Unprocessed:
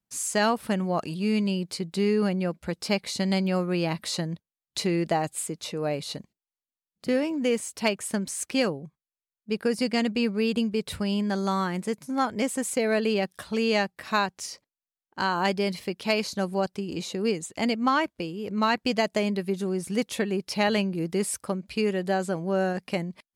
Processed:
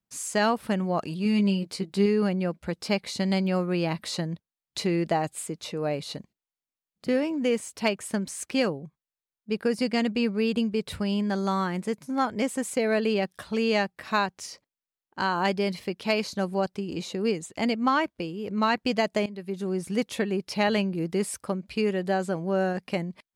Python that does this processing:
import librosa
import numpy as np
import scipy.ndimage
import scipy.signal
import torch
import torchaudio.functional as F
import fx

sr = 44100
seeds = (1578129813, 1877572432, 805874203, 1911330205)

y = fx.doubler(x, sr, ms=15.0, db=-6, at=(1.24, 2.06))
y = fx.edit(y, sr, fx.fade_in_from(start_s=19.26, length_s=0.48, floor_db=-17.0), tone=tone)
y = fx.peak_eq(y, sr, hz=12000.0, db=-4.5, octaves=2.0)